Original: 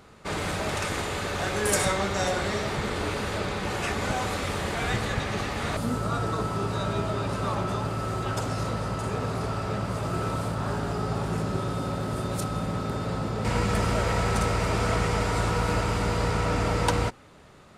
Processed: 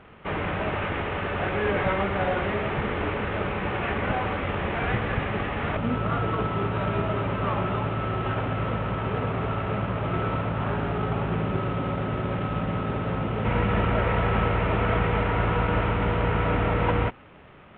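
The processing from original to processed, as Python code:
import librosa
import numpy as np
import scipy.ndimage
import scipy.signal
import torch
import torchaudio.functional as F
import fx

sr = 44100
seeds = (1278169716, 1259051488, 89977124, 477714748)

y = fx.cvsd(x, sr, bps=16000)
y = y * librosa.db_to_amplitude(2.5)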